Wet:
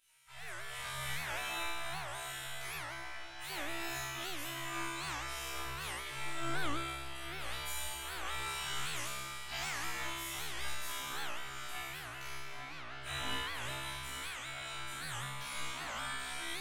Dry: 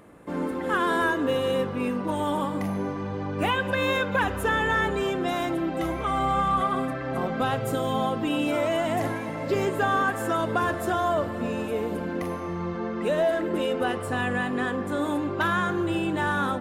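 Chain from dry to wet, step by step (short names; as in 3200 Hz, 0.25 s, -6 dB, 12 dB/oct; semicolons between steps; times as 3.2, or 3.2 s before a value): spectral gate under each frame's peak -25 dB weak; resonator 67 Hz, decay 1.5 s, harmonics all, mix 100%; darkening echo 0.84 s, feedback 79%, low-pass 2200 Hz, level -10 dB; shoebox room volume 870 m³, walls furnished, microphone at 2.9 m; record warp 78 rpm, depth 250 cents; gain +15 dB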